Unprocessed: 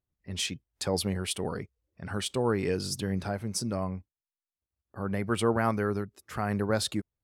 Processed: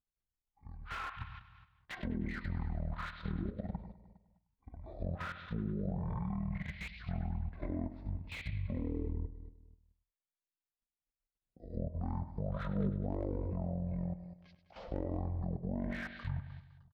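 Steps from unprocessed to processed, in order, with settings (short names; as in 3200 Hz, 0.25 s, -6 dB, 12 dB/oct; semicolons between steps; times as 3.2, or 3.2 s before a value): speed mistake 78 rpm record played at 33 rpm; feedback echo 0.102 s, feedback 59%, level -9 dB; level quantiser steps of 11 dB; high shelf 3700 Hz -6.5 dB; treble ducked by the level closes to 1900 Hz, closed at -30 dBFS; bell 7100 Hz -4.5 dB 1.4 oct; de-hum 311.3 Hz, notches 6; slew limiter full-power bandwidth 29 Hz; gain -3.5 dB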